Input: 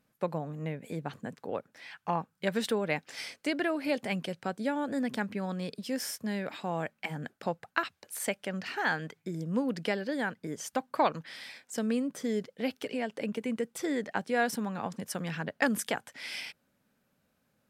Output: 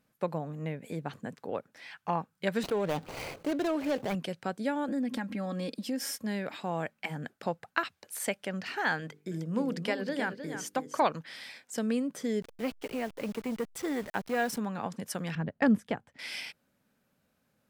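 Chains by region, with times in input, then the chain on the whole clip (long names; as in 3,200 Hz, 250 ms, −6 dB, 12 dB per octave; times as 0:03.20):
0:02.63–0:04.15: running median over 25 samples + parametric band 230 Hz −9 dB 0.31 octaves + envelope flattener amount 50%
0:04.88–0:06.24: parametric band 280 Hz +5 dB 0.87 octaves + comb filter 3.7 ms, depth 69% + downward compressor 3 to 1, threshold −31 dBFS
0:09.00–0:11.02: mains-hum notches 50/100/150/200/250/300/350/400/450/500 Hz + single-tap delay 312 ms −9 dB
0:12.42–0:14.58: hold until the input has moved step −42.5 dBFS + saturating transformer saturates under 910 Hz
0:15.35–0:16.19: RIAA equalisation playback + notch filter 1,500 Hz, Q 19 + expander for the loud parts, over −41 dBFS
whole clip: no processing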